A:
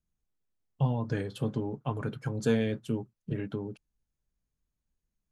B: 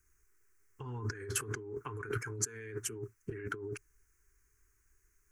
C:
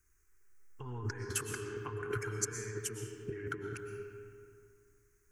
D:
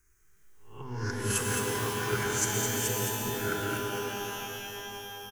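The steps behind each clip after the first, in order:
drawn EQ curve 110 Hz 0 dB, 170 Hz −22 dB, 410 Hz +8 dB, 590 Hz −27 dB, 960 Hz 0 dB, 1,500 Hz +11 dB, 2,200 Hz +7 dB, 3,600 Hz −18 dB, 6,100 Hz +4 dB, 13,000 Hz −4 dB; compressor whose output falls as the input rises −43 dBFS, ratio −1; high-shelf EQ 6,600 Hz +11.5 dB; level +1.5 dB
comb and all-pass reverb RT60 2.4 s, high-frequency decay 0.55×, pre-delay 80 ms, DRR 4 dB; level −1 dB
peak hold with a rise ahead of every peak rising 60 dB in 0.43 s; on a send: single-tap delay 213 ms −6 dB; on the sum: reverb with rising layers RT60 3 s, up +12 semitones, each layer −2 dB, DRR 2.5 dB; level +2.5 dB

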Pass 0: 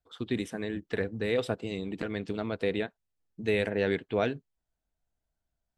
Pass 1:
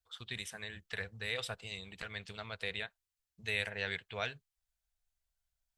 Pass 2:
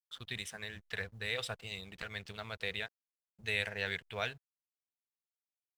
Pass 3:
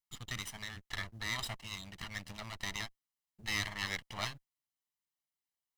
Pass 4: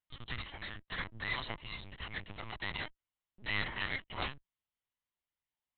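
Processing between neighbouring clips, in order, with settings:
guitar amp tone stack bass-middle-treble 10-0-10; level +3 dB
slack as between gear wheels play −54 dBFS; log-companded quantiser 8 bits; level +1 dB
lower of the sound and its delayed copy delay 1 ms; level +2 dB
linear-prediction vocoder at 8 kHz pitch kept; level +1.5 dB

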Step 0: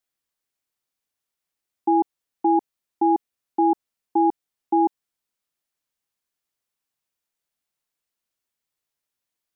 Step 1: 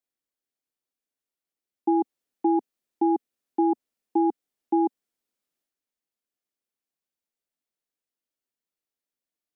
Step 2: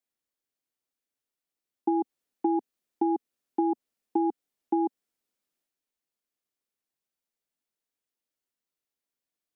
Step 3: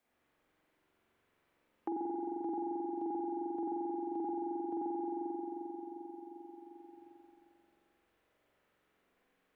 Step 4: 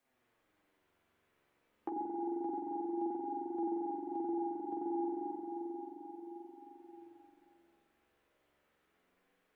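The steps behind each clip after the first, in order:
parametric band 430 Hz +5.5 dB 1.9 octaves; transient designer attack +2 dB, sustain +6 dB; graphic EQ with 15 bands 100 Hz −6 dB, 250 Hz +5 dB, 1,000 Hz −3 dB; level −8.5 dB
downward compressor, threshold −22 dBFS, peak gain reduction 4.5 dB
spring reverb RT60 2.8 s, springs 44 ms, chirp 55 ms, DRR −7 dB; brickwall limiter −24 dBFS, peak gain reduction 10.5 dB; multiband upward and downward compressor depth 70%; level −7 dB
flanger 0.3 Hz, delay 7.2 ms, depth 7.5 ms, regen +25%; level +3.5 dB

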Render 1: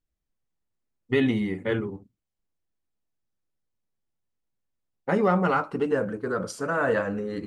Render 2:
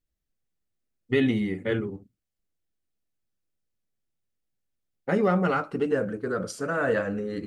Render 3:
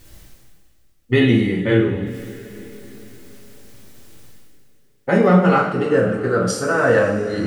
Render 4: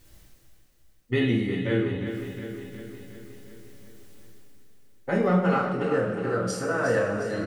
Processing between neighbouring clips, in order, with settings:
parametric band 960 Hz −7.5 dB 0.54 octaves
reversed playback; upward compression, threshold −25 dBFS; reversed playback; coupled-rooms reverb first 0.53 s, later 4.5 s, from −18 dB, DRR −1 dB; level +6 dB
repeating echo 360 ms, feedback 59%, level −9 dB; level −9 dB

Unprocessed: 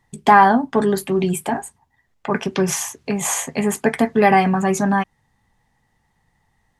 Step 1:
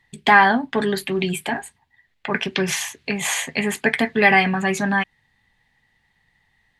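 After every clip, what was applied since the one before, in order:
flat-topped bell 2,700 Hz +11 dB
level −4 dB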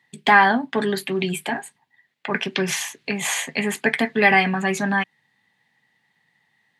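high-pass filter 140 Hz 24 dB per octave
level −1 dB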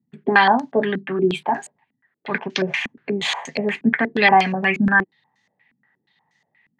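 low-pass on a step sequencer 8.4 Hz 230–6,200 Hz
level −1 dB

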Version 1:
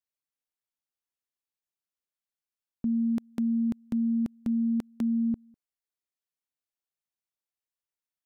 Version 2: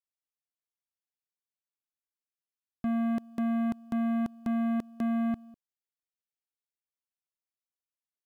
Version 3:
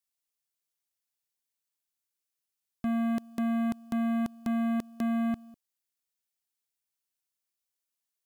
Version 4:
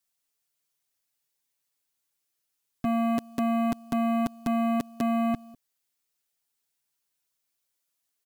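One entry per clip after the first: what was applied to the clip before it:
leveller curve on the samples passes 3; level −3.5 dB
high-shelf EQ 3,100 Hz +9.5 dB
comb filter 7.1 ms, depth 90%; level +4 dB

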